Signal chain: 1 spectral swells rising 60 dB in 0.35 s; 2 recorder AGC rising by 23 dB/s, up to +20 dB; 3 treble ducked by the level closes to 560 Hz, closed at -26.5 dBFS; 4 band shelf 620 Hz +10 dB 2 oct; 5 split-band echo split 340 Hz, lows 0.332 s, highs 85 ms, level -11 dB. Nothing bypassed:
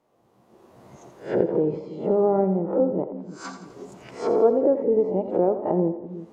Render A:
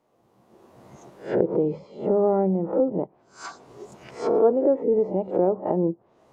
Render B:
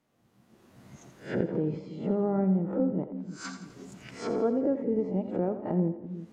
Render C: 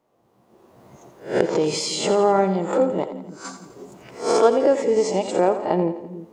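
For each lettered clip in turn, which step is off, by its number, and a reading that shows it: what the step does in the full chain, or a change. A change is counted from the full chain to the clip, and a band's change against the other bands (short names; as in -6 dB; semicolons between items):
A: 5, echo-to-direct -9.5 dB to none; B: 4, 500 Hz band -8.5 dB; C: 3, 2 kHz band +10.0 dB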